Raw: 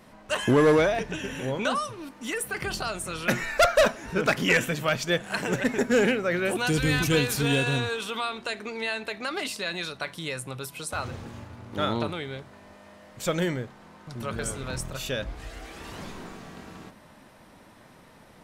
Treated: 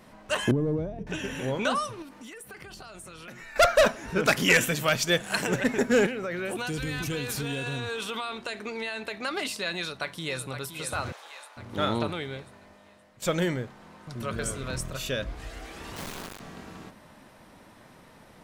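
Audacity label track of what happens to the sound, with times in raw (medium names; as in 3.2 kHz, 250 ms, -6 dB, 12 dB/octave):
0.510000	1.070000	FFT filter 170 Hz 0 dB, 800 Hz -17 dB, 1.6 kHz -29 dB
2.020000	3.560000	compression 8:1, threshold -41 dBFS
4.250000	5.470000	treble shelf 4.2 kHz +8.5 dB
6.060000	9.240000	compression, threshold -28 dBFS
9.760000	10.480000	echo throw 520 ms, feedback 60%, level -9 dB
11.120000	11.570000	high-pass 640 Hz 24 dB/octave
12.240000	13.220000	fade out, to -12 dB
14.120000	15.320000	Butterworth band-stop 840 Hz, Q 6.1
15.960000	16.400000	word length cut 6-bit, dither none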